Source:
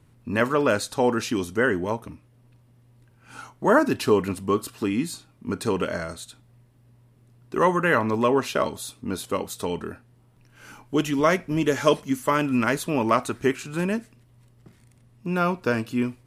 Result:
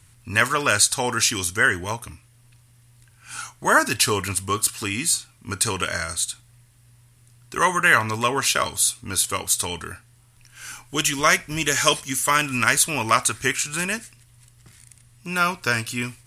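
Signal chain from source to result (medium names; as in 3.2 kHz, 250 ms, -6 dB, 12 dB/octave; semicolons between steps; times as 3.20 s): FFT filter 100 Hz 0 dB, 200 Hz -12 dB, 500 Hz -11 dB, 1.7 kHz +3 dB, 3.8 kHz +6 dB, 9.6 kHz +14 dB, 14 kHz +5 dB; trim +5 dB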